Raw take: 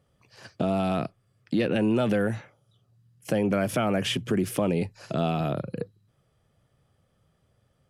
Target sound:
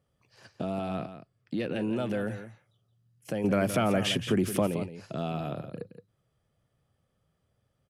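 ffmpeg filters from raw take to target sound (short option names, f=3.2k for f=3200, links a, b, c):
-filter_complex "[0:a]asettb=1/sr,asplit=3[a][b][c];[a]atrim=end=0.794[d];[b]atrim=start=0.79:end=1.58,asetpts=PTS-STARTPTS,afade=t=in:d=0.004:c=qsin,afade=t=out:st=0.786:d=0.004:c=qsin,highshelf=f=5.3k:g=-5.5[e];[c]atrim=start=1.576[f];[d][e]acrossfade=d=0.004:c1=hsin:c2=qsin[g];[g][f]acrossfade=d=0.004:c1=qsin:c2=hsin,asettb=1/sr,asplit=3[h][i][j];[h]atrim=end=3.444[k];[i]atrim=start=3.44:end=4.67,asetpts=PTS-STARTPTS,afade=t=in:d=0.004:c=qsin,afade=t=out:st=1.226:d=0.004:c=qsin,acontrast=63[l];[j]atrim=start=4.666[m];[k][l]acrossfade=d=0.004:c1=hsin:c2=qsin[n];[n][m]acrossfade=d=0.004:c1=qsin:c2=hsin,aecho=1:1:170:0.282,volume=-7dB"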